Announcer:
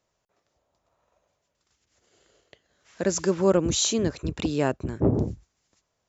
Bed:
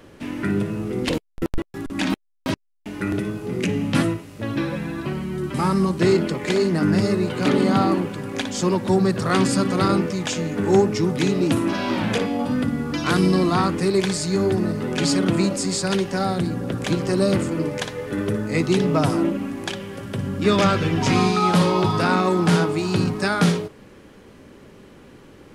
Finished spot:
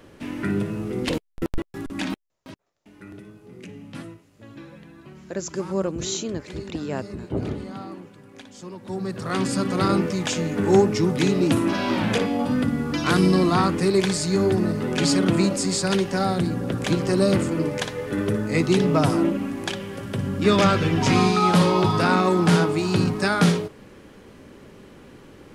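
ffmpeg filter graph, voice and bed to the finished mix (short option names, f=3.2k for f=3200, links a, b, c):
-filter_complex "[0:a]adelay=2300,volume=-5dB[a];[1:a]volume=15.5dB,afade=t=out:st=1.84:d=0.59:silence=0.16788,afade=t=in:st=8.76:d=1.38:silence=0.133352[b];[a][b]amix=inputs=2:normalize=0"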